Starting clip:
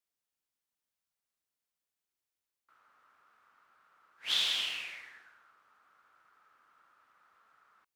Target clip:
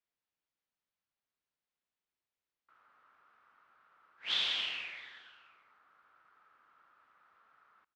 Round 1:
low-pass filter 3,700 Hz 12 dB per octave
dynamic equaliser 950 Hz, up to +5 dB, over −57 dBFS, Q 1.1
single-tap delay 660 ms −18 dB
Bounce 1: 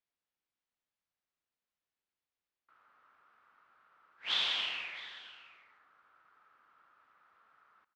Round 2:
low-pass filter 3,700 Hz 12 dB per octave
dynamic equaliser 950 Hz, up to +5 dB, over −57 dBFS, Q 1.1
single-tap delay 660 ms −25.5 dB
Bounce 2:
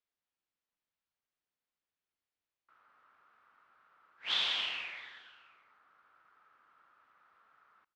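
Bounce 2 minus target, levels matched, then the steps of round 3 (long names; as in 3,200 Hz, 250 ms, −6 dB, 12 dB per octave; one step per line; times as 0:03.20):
1,000 Hz band +3.0 dB
low-pass filter 3,700 Hz 12 dB per octave
single-tap delay 660 ms −25.5 dB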